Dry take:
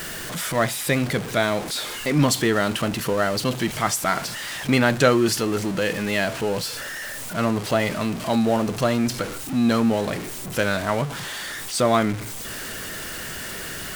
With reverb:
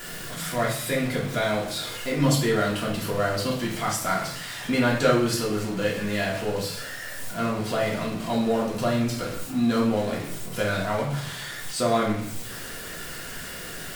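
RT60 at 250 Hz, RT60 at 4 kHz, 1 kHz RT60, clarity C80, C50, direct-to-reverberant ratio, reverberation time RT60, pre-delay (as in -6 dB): 0.80 s, 0.55 s, 0.60 s, 9.0 dB, 5.0 dB, -4.5 dB, 0.65 s, 3 ms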